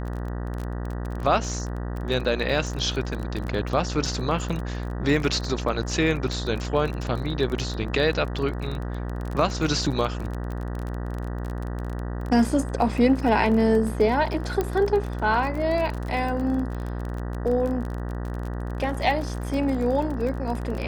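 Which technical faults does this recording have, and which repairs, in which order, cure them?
buzz 60 Hz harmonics 32 -30 dBFS
crackle 29/s -29 dBFS
14.61 pop -12 dBFS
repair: de-click; de-hum 60 Hz, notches 32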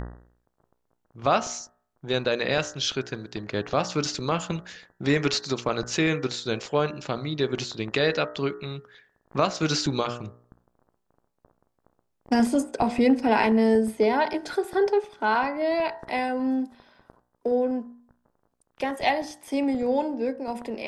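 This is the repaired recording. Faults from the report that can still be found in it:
none

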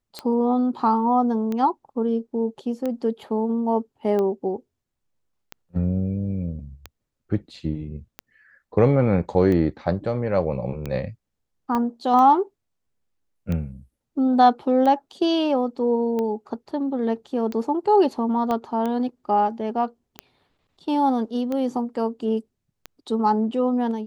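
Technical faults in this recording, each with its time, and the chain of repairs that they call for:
tick 45 rpm -16 dBFS
11.75 pop -13 dBFS
18.51 pop -14 dBFS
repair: de-click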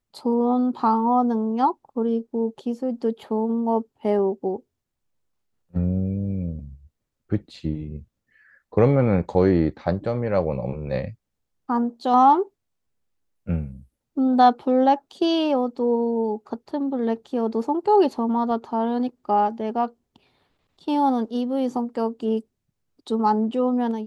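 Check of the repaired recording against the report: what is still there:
11.75 pop
18.51 pop

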